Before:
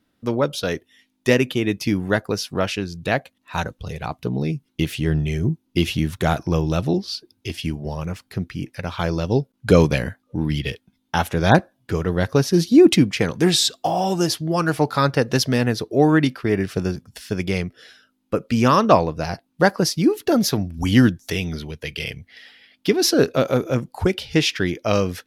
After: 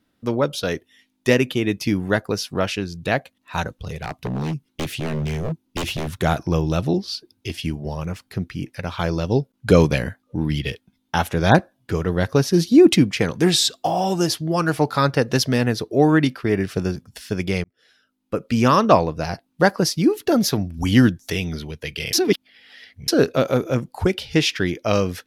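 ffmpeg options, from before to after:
ffmpeg -i in.wav -filter_complex "[0:a]asettb=1/sr,asplit=3[link_01][link_02][link_03];[link_01]atrim=end=3.804[link_04];[link_02]atrim=start=3.8:end=6.14,asetpts=PTS-STARTPTS,afade=type=in:duration=0.004:curve=qsin,afade=type=out:start_time=2.336:duration=0.004:curve=qsin,aeval=exprs='0.106*(abs(mod(val(0)/0.106+3,4)-2)-1)':channel_layout=same[link_05];[link_03]atrim=start=6.136[link_06];[link_04][link_05]acrossfade=duration=0.004:curve1=hsin:curve2=qsin[link_07];[link_07][link_06]acrossfade=duration=0.004:curve1=qsin:curve2=hsin,asplit=4[link_08][link_09][link_10][link_11];[link_08]atrim=end=17.64,asetpts=PTS-STARTPTS,afade=type=out:start_time=17.636:duration=0.004:curve=hsin[link_12];[link_09]atrim=start=17.64:end=22.132,asetpts=PTS-STARTPTS,afade=type=in:duration=0.92[link_13];[link_10]atrim=start=22.128:end=23.082,asetpts=PTS-STARTPTS,areverse[link_14];[link_11]atrim=start=23.078[link_15];[link_12][link_13]concat=n=2:v=0:a=1[link_16];[link_16][link_14]acrossfade=duration=0.004:curve1=hsin:curve2=hsin[link_17];[link_17][link_15]acrossfade=duration=0.004:curve1=hsin:curve2=hsin" out.wav

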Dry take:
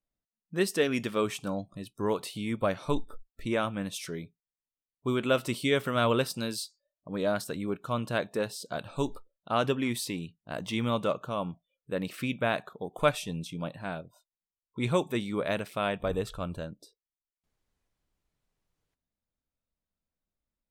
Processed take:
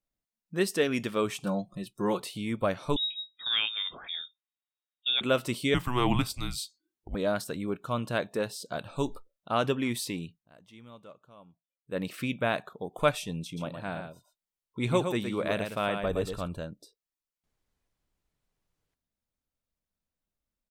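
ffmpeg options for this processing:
ffmpeg -i in.wav -filter_complex "[0:a]asettb=1/sr,asplit=3[link_01][link_02][link_03];[link_01]atrim=end=1.424[link_04];[link_02]atrim=start=1.42:end=2.2,asetpts=PTS-STARTPTS,afade=type=in:duration=0.004:curve=qsin,afade=type=out:start_time=0.776:duration=0.004:curve=qsin,aecho=1:1:5.6:0.76,atrim=end_sample=34398[link_05];[link_03]atrim=start=2.196[link_06];[link_04][link_05]acrossfade=duration=0.004:curve1=hsin:curve2=qsin[link_07];[link_07][link_06]acrossfade=duration=0.004:curve1=qsin:curve2=hsin,asettb=1/sr,asplit=3[link_08][link_09][link_10];[link_08]atrim=end=2.964[link_11];[link_09]atrim=start=2.96:end=5.21,asetpts=PTS-STARTPTS,afade=type=in:duration=0.004:curve=qsin,afade=type=out:start_time=2.246:duration=0.004:curve=qsin,lowpass=frequency=3200:width_type=q:width=0.5098,lowpass=frequency=3200:width_type=q:width=0.6013,lowpass=frequency=3200:width_type=q:width=0.9,lowpass=frequency=3200:width_type=q:width=2.563,afreqshift=-3800[link_12];[link_10]atrim=start=5.206[link_13];[link_11][link_12]acrossfade=duration=0.004:curve1=hsin:curve2=qsin[link_14];[link_14][link_13]acrossfade=duration=0.004:curve1=qsin:curve2=hsin,asettb=1/sr,asplit=3[link_15][link_16][link_17];[link_15]atrim=end=5.744[link_18];[link_16]atrim=start=5.74:end=7.15,asetpts=PTS-STARTPTS,afade=type=in:duration=0.004:curve=qsin,afade=type=out:start_time=1.406:duration=0.004:curve=qsin,afreqshift=-250[link_19];[link_17]atrim=start=7.146[link_20];[link_18][link_19]acrossfade=duration=0.004:curve1=hsin:curve2=qsin[link_21];[link_21][link_20]acrossfade=duration=0.004:curve1=qsin:curve2=hsin,asplit=3[link_22][link_23][link_24];[link_22]afade=type=out:start_time=13.56:duration=0.02[link_25];[link_23]aecho=1:1:115:0.473,afade=type=in:start_time=13.56:duration=0.02,afade=type=out:start_time=16.47:duration=0.02[link_26];[link_24]afade=type=in:start_time=16.47:duration=0.02[link_27];[link_25][link_26][link_27]amix=inputs=3:normalize=0,asplit=3[link_28][link_29][link_30];[link_28]atrim=end=10.49,asetpts=PTS-STARTPTS,afade=type=out:start_time=10.36:duration=0.13:silence=0.0891251[link_31];[link_29]atrim=start=10.49:end=11.84,asetpts=PTS-STARTPTS,volume=-21dB[link_32];[link_30]atrim=start=11.84,asetpts=PTS-STARTPTS,afade=type=in:duration=0.13:silence=0.0891251[link_33];[link_31][link_32][link_33]concat=n=3:v=0:a=1" out.wav

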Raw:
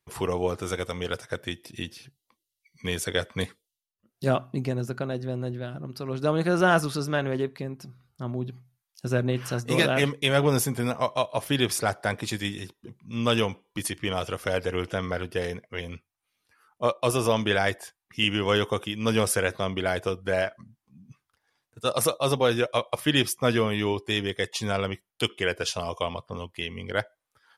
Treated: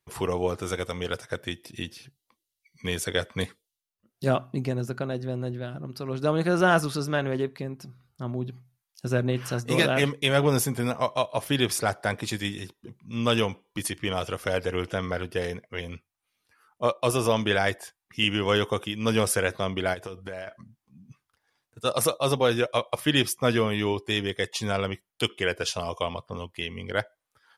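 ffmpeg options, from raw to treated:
ffmpeg -i in.wav -filter_complex "[0:a]asplit=3[link_01][link_02][link_03];[link_01]afade=type=out:start_time=19.93:duration=0.02[link_04];[link_02]acompressor=threshold=-32dB:ratio=10:attack=3.2:release=140:knee=1:detection=peak,afade=type=in:start_time=19.93:duration=0.02,afade=type=out:start_time=20.47:duration=0.02[link_05];[link_03]afade=type=in:start_time=20.47:duration=0.02[link_06];[link_04][link_05][link_06]amix=inputs=3:normalize=0" out.wav

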